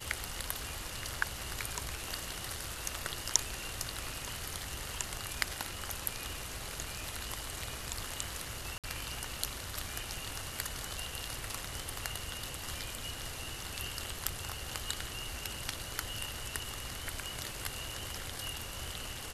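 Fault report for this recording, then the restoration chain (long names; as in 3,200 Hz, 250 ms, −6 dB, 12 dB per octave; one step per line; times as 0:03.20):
0:08.78–0:08.84: drop-out 57 ms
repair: repair the gap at 0:08.78, 57 ms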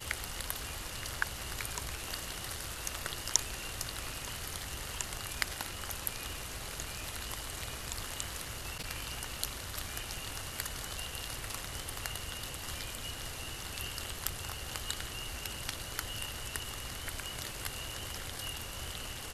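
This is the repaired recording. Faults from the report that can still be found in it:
none of them is left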